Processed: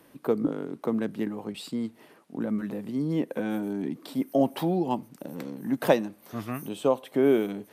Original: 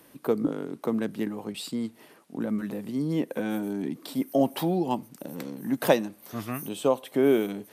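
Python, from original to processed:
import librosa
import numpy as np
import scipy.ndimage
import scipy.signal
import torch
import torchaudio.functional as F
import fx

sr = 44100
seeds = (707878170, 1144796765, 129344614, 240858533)

y = fx.high_shelf(x, sr, hz=3700.0, db=-6.5)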